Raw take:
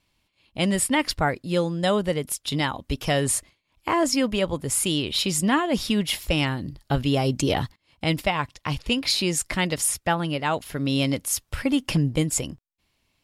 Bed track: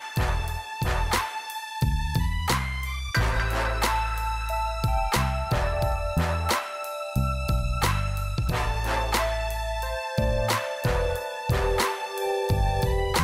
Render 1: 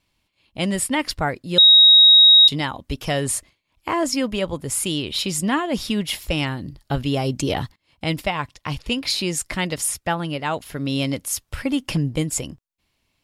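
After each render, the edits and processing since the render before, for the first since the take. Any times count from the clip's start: 1.58–2.48 bleep 3790 Hz -7 dBFS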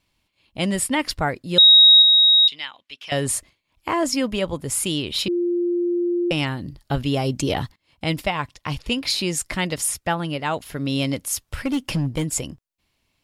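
2.02–3.12 band-pass 2800 Hz, Q 1.8; 5.28–6.31 bleep 349 Hz -18.5 dBFS; 11.34–12.31 hard clip -17.5 dBFS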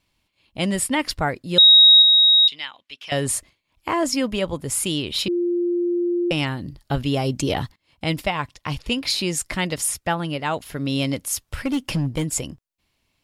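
nothing audible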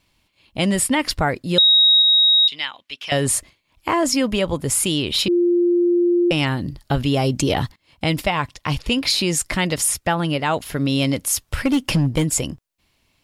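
in parallel at 0 dB: limiter -17.5 dBFS, peak gain reduction 10.5 dB; on the sum: compressor 2.5:1, threshold -14 dBFS, peak gain reduction 5 dB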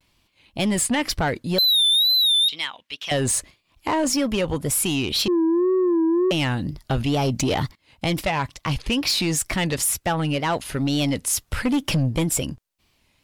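soft clip -15.5 dBFS, distortion -14 dB; wow and flutter 120 cents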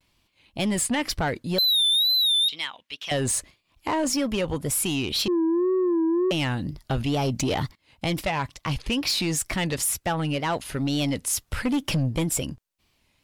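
gain -3 dB

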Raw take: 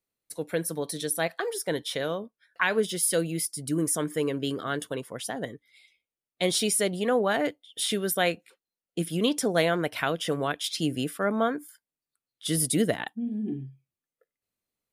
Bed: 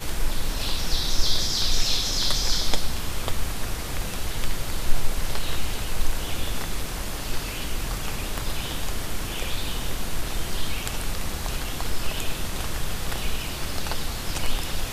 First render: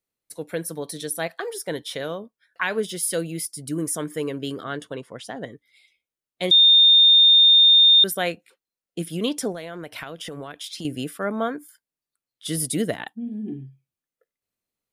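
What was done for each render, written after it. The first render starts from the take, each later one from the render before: 4.64–5.52 air absorption 60 m; 6.51–8.04 bleep 3640 Hz -10 dBFS; 9.52–10.85 compressor 12:1, threshold -30 dBFS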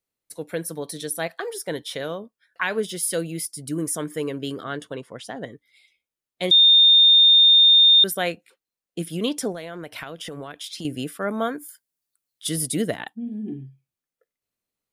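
11.28–12.49 high shelf 4900 Hz +9.5 dB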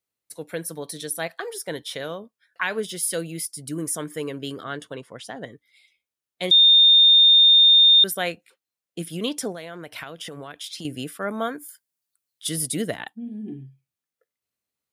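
HPF 55 Hz; bell 290 Hz -3 dB 2.8 oct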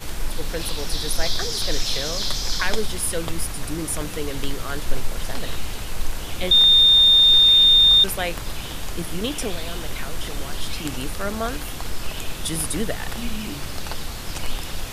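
add bed -1.5 dB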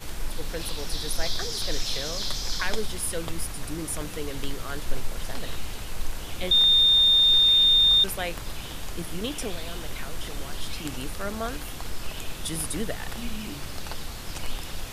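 gain -5 dB

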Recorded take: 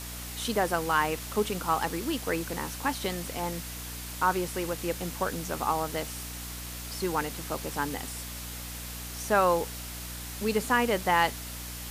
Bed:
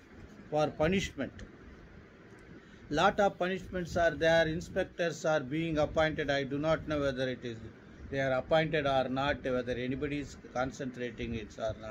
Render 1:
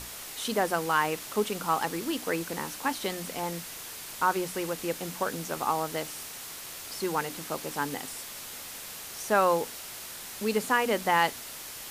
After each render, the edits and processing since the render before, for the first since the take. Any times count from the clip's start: notches 60/120/180/240/300 Hz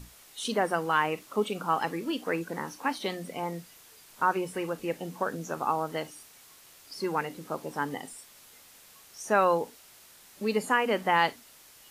noise print and reduce 13 dB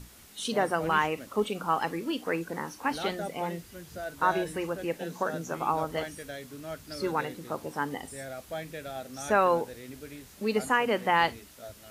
add bed -9.5 dB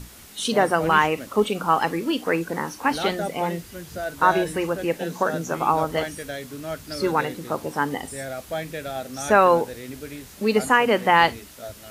gain +7.5 dB

